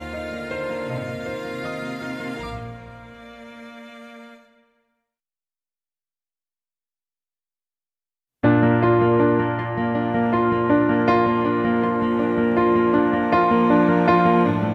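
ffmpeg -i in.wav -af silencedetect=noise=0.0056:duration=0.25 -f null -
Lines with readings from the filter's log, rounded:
silence_start: 4.44
silence_end: 8.43 | silence_duration: 3.99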